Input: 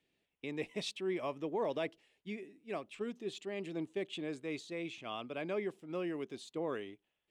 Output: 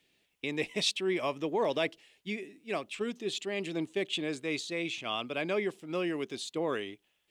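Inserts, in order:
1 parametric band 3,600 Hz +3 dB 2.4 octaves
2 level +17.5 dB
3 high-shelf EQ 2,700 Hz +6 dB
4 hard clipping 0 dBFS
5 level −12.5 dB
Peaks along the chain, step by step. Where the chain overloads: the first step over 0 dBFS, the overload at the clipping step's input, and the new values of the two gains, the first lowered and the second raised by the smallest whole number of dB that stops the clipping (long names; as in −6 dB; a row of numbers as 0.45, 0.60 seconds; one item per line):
−24.5, −7.0, −2.5, −2.5, −15.0 dBFS
no step passes full scale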